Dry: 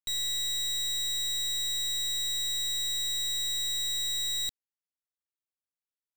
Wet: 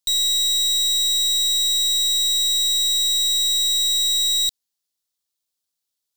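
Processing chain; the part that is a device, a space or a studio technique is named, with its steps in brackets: over-bright horn tweeter (resonant high shelf 3 kHz +8 dB, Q 1.5; peak limiter -20.5 dBFS, peak gain reduction 4 dB); trim +6.5 dB

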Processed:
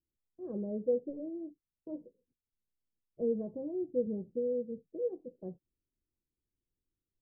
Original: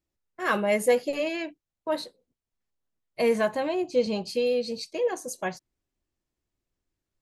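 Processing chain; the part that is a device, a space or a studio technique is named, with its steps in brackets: under water (low-pass 400 Hz 24 dB/octave; peaking EQ 500 Hz +6 dB 0.28 oct); trim -6 dB

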